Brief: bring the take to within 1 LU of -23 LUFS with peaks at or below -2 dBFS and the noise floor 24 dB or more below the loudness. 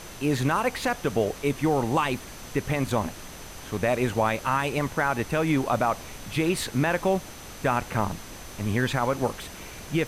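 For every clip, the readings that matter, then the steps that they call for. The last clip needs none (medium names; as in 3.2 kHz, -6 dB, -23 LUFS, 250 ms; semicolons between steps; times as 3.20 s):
steady tone 6.1 kHz; tone level -51 dBFS; noise floor -42 dBFS; noise floor target -51 dBFS; loudness -26.5 LUFS; peak level -11.5 dBFS; loudness target -23.0 LUFS
-> band-stop 6.1 kHz, Q 30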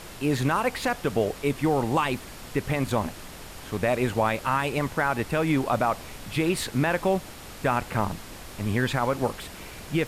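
steady tone not found; noise floor -42 dBFS; noise floor target -51 dBFS
-> noise print and reduce 9 dB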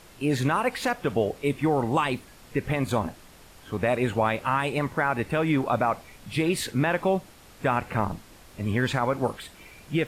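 noise floor -51 dBFS; loudness -26.5 LUFS; peak level -12.0 dBFS; loudness target -23.0 LUFS
-> trim +3.5 dB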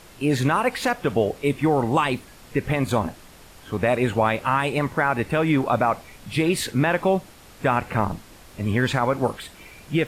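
loudness -23.0 LUFS; peak level -8.5 dBFS; noise floor -47 dBFS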